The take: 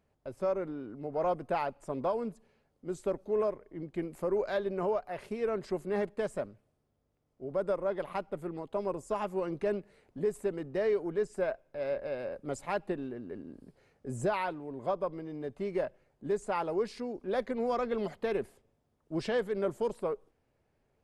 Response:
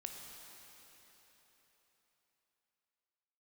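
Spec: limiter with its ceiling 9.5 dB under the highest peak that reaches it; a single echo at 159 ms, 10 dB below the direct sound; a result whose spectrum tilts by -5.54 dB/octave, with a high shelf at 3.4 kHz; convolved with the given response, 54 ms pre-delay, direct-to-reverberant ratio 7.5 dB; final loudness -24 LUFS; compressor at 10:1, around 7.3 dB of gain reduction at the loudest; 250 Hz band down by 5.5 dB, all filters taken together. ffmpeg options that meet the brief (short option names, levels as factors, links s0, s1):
-filter_complex "[0:a]equalizer=f=250:t=o:g=-8.5,highshelf=f=3400:g=-3.5,acompressor=threshold=0.0178:ratio=10,alimiter=level_in=3.16:limit=0.0631:level=0:latency=1,volume=0.316,aecho=1:1:159:0.316,asplit=2[s0][s1];[1:a]atrim=start_sample=2205,adelay=54[s2];[s1][s2]afir=irnorm=-1:irlink=0,volume=0.562[s3];[s0][s3]amix=inputs=2:normalize=0,volume=8.91"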